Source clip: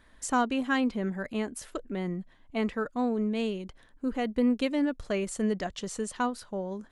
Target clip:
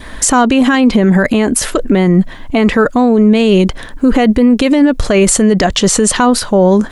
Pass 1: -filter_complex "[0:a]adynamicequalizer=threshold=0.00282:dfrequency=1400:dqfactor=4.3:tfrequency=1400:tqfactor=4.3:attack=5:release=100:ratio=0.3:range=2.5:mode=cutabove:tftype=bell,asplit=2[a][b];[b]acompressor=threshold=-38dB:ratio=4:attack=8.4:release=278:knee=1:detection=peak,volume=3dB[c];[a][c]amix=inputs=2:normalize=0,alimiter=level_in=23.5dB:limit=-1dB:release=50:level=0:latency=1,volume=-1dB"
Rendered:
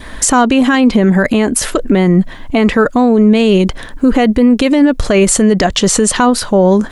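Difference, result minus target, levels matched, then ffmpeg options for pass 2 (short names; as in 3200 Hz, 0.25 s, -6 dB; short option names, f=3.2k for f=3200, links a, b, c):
compressor: peak gain reduction +5.5 dB
-filter_complex "[0:a]adynamicequalizer=threshold=0.00282:dfrequency=1400:dqfactor=4.3:tfrequency=1400:tqfactor=4.3:attack=5:release=100:ratio=0.3:range=2.5:mode=cutabove:tftype=bell,asplit=2[a][b];[b]acompressor=threshold=-30.5dB:ratio=4:attack=8.4:release=278:knee=1:detection=peak,volume=3dB[c];[a][c]amix=inputs=2:normalize=0,alimiter=level_in=23.5dB:limit=-1dB:release=50:level=0:latency=1,volume=-1dB"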